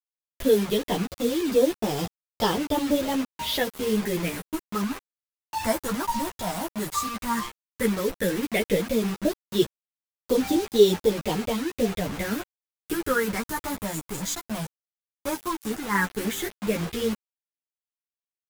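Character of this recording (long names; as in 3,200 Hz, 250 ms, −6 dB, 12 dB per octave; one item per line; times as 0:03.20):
phaser sweep stages 4, 0.12 Hz, lowest notch 430–2,000 Hz
a quantiser's noise floor 6 bits, dither none
a shimmering, thickened sound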